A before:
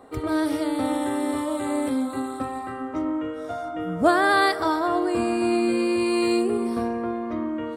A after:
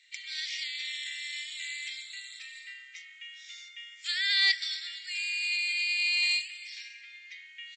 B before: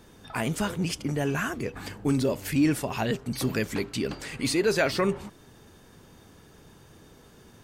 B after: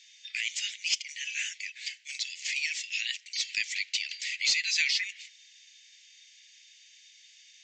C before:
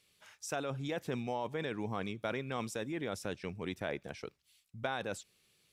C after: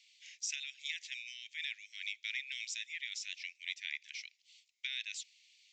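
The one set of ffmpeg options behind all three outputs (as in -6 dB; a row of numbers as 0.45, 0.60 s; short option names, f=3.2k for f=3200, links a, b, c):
-af "asuperpass=centerf=5900:order=20:qfactor=0.52,aeval=exprs='0.133*(cos(1*acos(clip(val(0)/0.133,-1,1)))-cos(1*PI/2))+0.00668*(cos(5*acos(clip(val(0)/0.133,-1,1)))-cos(5*PI/2))':c=same,aresample=16000,aresample=44100,volume=5.5dB"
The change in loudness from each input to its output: -4.5, -2.0, -1.5 LU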